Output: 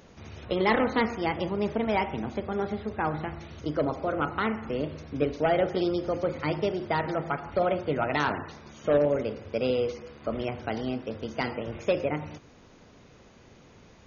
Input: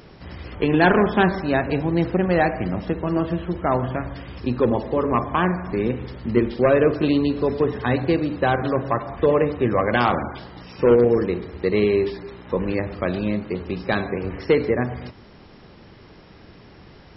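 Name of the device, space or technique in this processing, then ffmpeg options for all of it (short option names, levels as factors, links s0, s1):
nightcore: -af "asetrate=53802,aresample=44100,volume=0.422"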